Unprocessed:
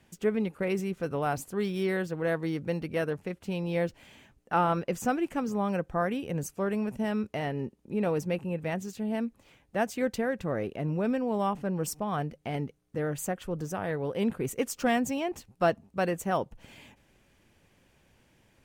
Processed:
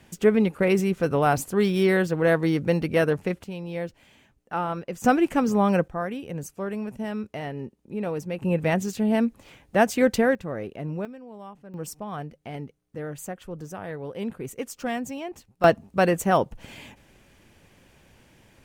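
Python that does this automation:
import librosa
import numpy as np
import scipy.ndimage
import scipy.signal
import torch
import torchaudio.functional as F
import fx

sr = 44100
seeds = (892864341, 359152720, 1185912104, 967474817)

y = fx.gain(x, sr, db=fx.steps((0.0, 8.5), (3.44, -2.5), (5.04, 8.5), (5.88, -1.0), (8.42, 9.0), (10.35, -1.0), (11.05, -13.5), (11.74, -3.0), (15.64, 8.0)))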